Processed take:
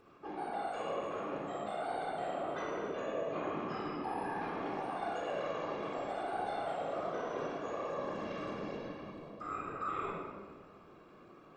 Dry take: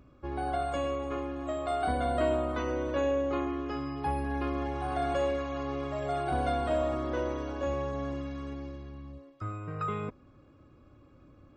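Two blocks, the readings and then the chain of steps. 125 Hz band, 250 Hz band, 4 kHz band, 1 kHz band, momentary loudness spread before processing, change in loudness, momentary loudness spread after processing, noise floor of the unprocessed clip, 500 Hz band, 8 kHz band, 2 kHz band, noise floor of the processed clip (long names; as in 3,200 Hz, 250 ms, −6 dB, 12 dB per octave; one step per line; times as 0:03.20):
−14.0 dB, −8.5 dB, −5.0 dB, −4.0 dB, 10 LU, −6.5 dB, 9 LU, −58 dBFS, −6.5 dB, can't be measured, −3.5 dB, −57 dBFS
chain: high-pass filter 430 Hz 12 dB per octave
reversed playback
downward compressor 4 to 1, threshold −44 dBFS, peak gain reduction 15.5 dB
reversed playback
random phases in short frames
rectangular room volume 2,100 cubic metres, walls mixed, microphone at 3.7 metres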